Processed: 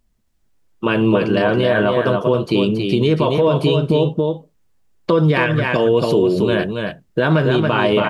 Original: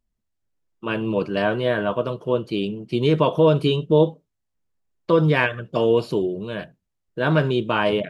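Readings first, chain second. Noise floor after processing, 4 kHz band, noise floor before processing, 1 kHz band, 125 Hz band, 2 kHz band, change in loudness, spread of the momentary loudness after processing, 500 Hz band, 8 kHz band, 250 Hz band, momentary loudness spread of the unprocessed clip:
-62 dBFS, +5.0 dB, -78 dBFS, +4.5 dB, +5.5 dB, +5.0 dB, +4.5 dB, 7 LU, +4.5 dB, n/a, +6.0 dB, 10 LU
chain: compressor 6:1, threshold -23 dBFS, peak gain reduction 11.5 dB; echo 0.277 s -5.5 dB; maximiser +17.5 dB; gain -5 dB

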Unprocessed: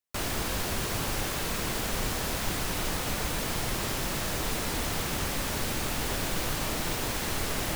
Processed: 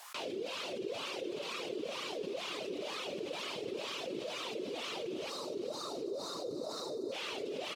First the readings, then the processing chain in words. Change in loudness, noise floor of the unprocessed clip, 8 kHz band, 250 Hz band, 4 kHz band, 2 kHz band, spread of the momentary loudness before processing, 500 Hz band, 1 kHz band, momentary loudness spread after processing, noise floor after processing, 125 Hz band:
-9.5 dB, -32 dBFS, -17.5 dB, -8.0 dB, -7.0 dB, -11.5 dB, 0 LU, -1.5 dB, -10.0 dB, 1 LU, -42 dBFS, -24.0 dB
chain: weighting filter D; spectral delete 5.3–7.12, 1400–3600 Hz; reverb removal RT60 1.9 s; HPF 95 Hz; band shelf 1200 Hz -15.5 dB; added noise violet -55 dBFS; soft clip -25 dBFS, distortion -18 dB; wah 2.1 Hz 360–1200 Hz, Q 5.6; feedback echo 0.376 s, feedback 52%, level -12 dB; fast leveller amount 70%; gain +6.5 dB

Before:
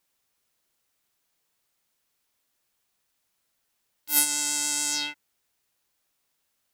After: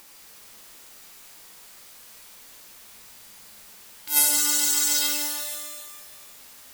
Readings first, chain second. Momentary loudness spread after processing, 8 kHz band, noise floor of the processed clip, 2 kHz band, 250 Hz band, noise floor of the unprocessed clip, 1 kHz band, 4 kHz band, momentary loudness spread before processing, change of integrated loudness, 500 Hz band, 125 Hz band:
18 LU, +4.5 dB, -48 dBFS, +2.0 dB, +2.0 dB, -76 dBFS, +2.5 dB, +4.0 dB, 7 LU, +3.5 dB, +9.0 dB, n/a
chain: bell 97 Hz -9.5 dB 0.66 oct; modulation noise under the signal 25 dB; upward compressor, threshold -33 dBFS; shimmer reverb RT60 1.7 s, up +12 st, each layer -2 dB, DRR -1.5 dB

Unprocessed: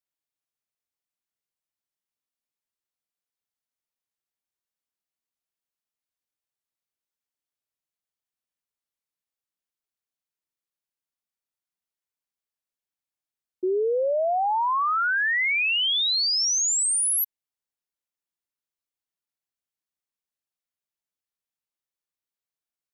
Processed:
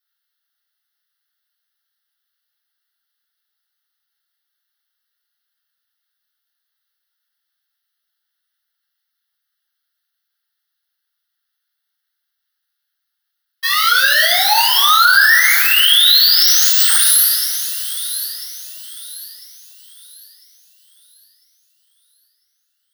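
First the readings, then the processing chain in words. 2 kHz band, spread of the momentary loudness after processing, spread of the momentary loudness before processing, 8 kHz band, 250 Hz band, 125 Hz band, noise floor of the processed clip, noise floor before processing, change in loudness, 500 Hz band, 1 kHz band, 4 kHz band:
+13.0 dB, 21 LU, 5 LU, +8.0 dB, under -40 dB, n/a, -76 dBFS, under -85 dBFS, +11.5 dB, -7.5 dB, +8.5 dB, +14.0 dB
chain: half-waves squared off; dynamic EQ 2400 Hz, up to -6 dB, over -38 dBFS, Q 7; inverse Chebyshev high-pass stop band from 420 Hz, stop band 50 dB; fixed phaser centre 1600 Hz, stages 8; thin delay 0.999 s, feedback 35%, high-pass 3200 Hz, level -16 dB; two-slope reverb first 0.52 s, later 4.2 s, from -18 dB, DRR -4.5 dB; maximiser +13 dB; gain -1 dB

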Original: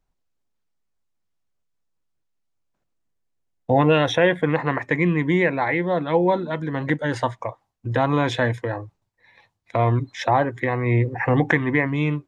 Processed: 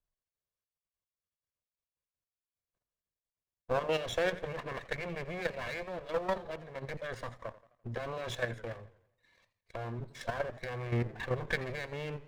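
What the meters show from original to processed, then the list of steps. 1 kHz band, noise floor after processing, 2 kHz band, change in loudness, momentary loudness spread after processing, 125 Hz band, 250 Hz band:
-17.0 dB, under -85 dBFS, -14.0 dB, -15.5 dB, 11 LU, -17.0 dB, -21.0 dB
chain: minimum comb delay 1.8 ms; level quantiser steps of 10 dB; warbling echo 85 ms, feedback 48%, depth 140 cents, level -17 dB; gain -8.5 dB

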